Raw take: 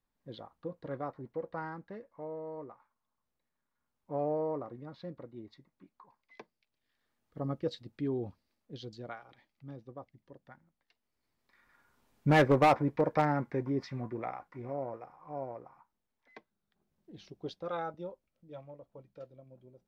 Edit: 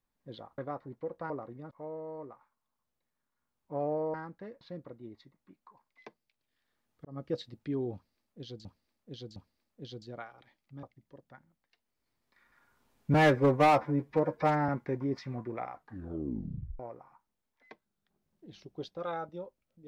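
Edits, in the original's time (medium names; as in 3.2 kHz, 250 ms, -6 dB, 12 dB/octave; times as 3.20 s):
0.58–0.91 s: delete
1.63–2.10 s: swap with 4.53–4.94 s
7.38–7.63 s: fade in
8.27–8.98 s: loop, 3 plays
9.74–10.00 s: delete
12.31–13.34 s: stretch 1.5×
14.37 s: tape stop 1.08 s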